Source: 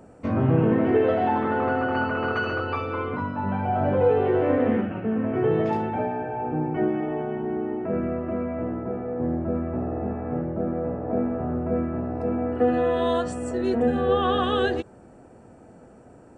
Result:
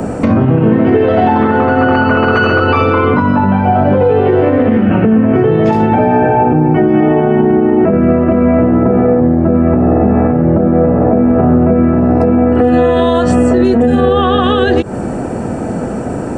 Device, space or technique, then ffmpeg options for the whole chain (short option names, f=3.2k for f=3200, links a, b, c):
mastering chain: -filter_complex "[0:a]equalizer=f=200:t=o:w=1.1:g=4,acrossover=split=110|4500[a][b][c];[a]acompressor=threshold=-38dB:ratio=4[d];[b]acompressor=threshold=-26dB:ratio=4[e];[c]acompressor=threshold=-57dB:ratio=4[f];[d][e][f]amix=inputs=3:normalize=0,acompressor=threshold=-34dB:ratio=6,alimiter=level_in=30dB:limit=-1dB:release=50:level=0:latency=1,volume=-1dB"